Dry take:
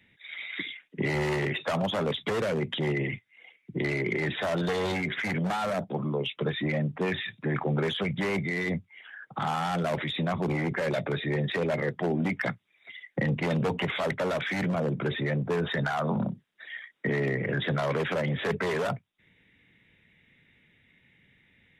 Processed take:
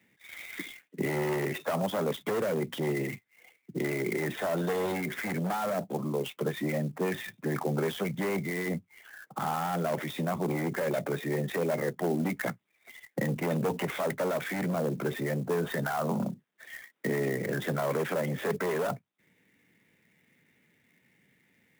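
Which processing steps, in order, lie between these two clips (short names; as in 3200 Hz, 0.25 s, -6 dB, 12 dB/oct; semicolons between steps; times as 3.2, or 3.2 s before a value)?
HPF 170 Hz 12 dB/oct; high shelf 2500 Hz -11.5 dB; clock jitter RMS 0.028 ms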